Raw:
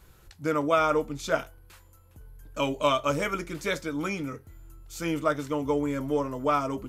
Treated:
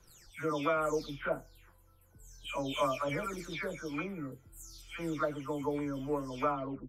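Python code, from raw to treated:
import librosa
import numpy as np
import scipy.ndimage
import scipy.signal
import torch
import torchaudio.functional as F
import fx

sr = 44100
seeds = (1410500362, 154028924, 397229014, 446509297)

y = fx.spec_delay(x, sr, highs='early', ms=379)
y = y * 10.0 ** (-6.5 / 20.0)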